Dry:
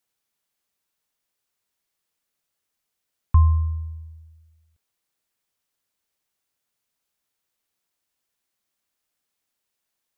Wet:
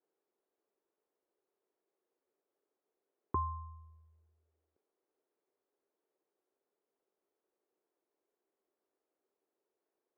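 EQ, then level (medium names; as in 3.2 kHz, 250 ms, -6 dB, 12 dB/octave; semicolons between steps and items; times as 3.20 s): ladder band-pass 430 Hz, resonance 60%; +14.5 dB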